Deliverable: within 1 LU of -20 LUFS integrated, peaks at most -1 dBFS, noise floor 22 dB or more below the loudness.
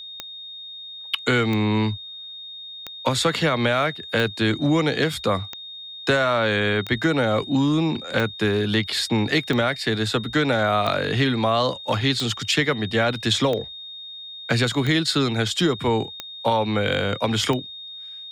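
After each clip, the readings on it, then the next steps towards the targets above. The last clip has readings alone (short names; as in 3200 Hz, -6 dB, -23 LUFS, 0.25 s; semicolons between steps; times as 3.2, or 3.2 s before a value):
clicks 14; steady tone 3700 Hz; tone level -35 dBFS; loudness -22.0 LUFS; peak -6.0 dBFS; loudness target -20.0 LUFS
-> de-click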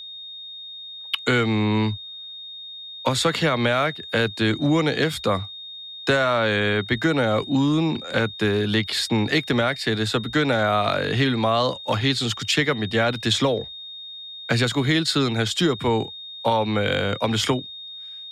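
clicks 0; steady tone 3700 Hz; tone level -35 dBFS
-> notch 3700 Hz, Q 30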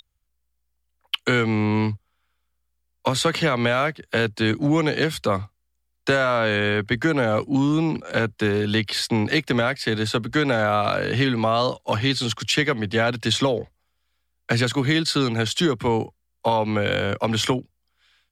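steady tone none; loudness -22.5 LUFS; peak -6.5 dBFS; loudness target -20.0 LUFS
-> gain +2.5 dB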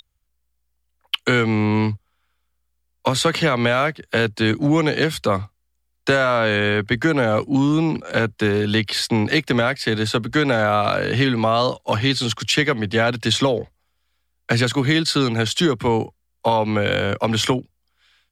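loudness -20.0 LUFS; peak -4.0 dBFS; noise floor -70 dBFS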